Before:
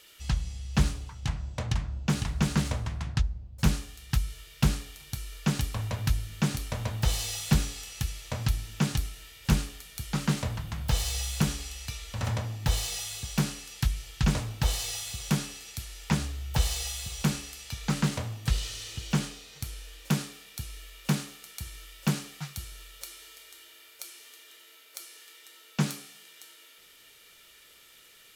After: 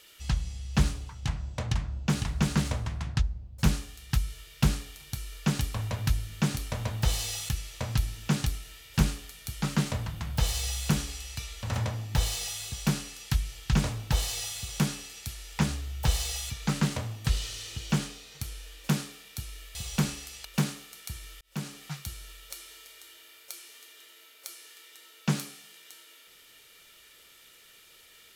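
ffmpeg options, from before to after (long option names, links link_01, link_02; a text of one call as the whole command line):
ffmpeg -i in.wav -filter_complex "[0:a]asplit=6[link_01][link_02][link_03][link_04][link_05][link_06];[link_01]atrim=end=7.492[link_07];[link_02]atrim=start=7.998:end=17.012[link_08];[link_03]atrim=start=17.708:end=20.962[link_09];[link_04]atrim=start=17.008:end=17.712[link_10];[link_05]atrim=start=20.958:end=21.92,asetpts=PTS-STARTPTS,afade=type=out:start_time=0.958:duration=0.004:curve=hsin[link_11];[link_06]atrim=start=21.92,asetpts=PTS-STARTPTS,afade=type=in:duration=0.46[link_12];[link_07][link_08]acrossfade=duration=0.004:curve1=hsin:curve2=hsin[link_13];[link_13][link_09]acrossfade=duration=0.004:curve1=hsin:curve2=hsin[link_14];[link_14][link_10]acrossfade=duration=0.004:curve1=hsin:curve2=hsin[link_15];[link_11][link_12]concat=n=2:v=0:a=1[link_16];[link_15][link_16]acrossfade=duration=0.004:curve1=hsin:curve2=hsin" out.wav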